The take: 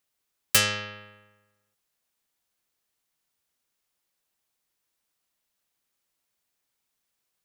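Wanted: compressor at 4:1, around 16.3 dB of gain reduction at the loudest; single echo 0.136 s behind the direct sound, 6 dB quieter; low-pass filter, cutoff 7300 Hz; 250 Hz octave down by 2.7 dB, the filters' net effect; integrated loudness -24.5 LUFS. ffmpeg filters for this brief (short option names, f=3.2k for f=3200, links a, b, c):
-af "lowpass=7.3k,equalizer=f=250:t=o:g=-3.5,acompressor=threshold=-38dB:ratio=4,aecho=1:1:136:0.501,volume=16dB"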